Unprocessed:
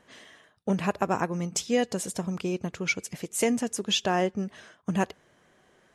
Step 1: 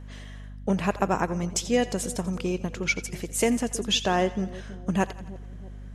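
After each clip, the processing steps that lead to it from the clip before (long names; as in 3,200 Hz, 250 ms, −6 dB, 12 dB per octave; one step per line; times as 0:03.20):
mains hum 50 Hz, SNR 13 dB
echo with a time of its own for lows and highs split 590 Hz, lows 321 ms, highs 86 ms, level −16 dB
level +1.5 dB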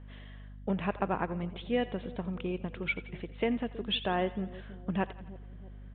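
downsampling to 8,000 Hz
level −6.5 dB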